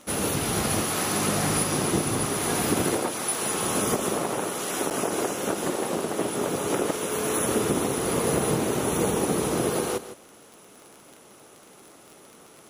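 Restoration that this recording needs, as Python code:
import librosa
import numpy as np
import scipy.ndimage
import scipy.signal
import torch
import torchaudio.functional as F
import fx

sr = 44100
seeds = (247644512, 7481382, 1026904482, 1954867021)

y = fx.fix_declick_ar(x, sr, threshold=6.5)
y = fx.fix_interpolate(y, sr, at_s=(4.9,), length_ms=7.8)
y = fx.fix_echo_inverse(y, sr, delay_ms=157, level_db=-13.0)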